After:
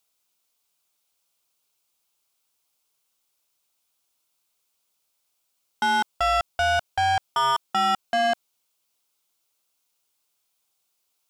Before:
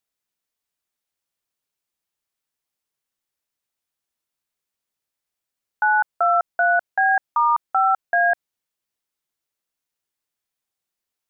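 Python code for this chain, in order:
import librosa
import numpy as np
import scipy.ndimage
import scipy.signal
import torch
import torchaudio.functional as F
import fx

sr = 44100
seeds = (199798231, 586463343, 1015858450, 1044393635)

p1 = fx.peak_eq(x, sr, hz=1800.0, db=-11.5, octaves=0.42)
p2 = fx.level_steps(p1, sr, step_db=15)
p3 = p1 + (p2 * librosa.db_to_amplitude(0.5))
p4 = fx.low_shelf(p3, sr, hz=490.0, db=-9.5)
p5 = 10.0 ** (-26.5 / 20.0) * np.tanh(p4 / 10.0 ** (-26.5 / 20.0))
y = p5 * librosa.db_to_amplitude(7.0)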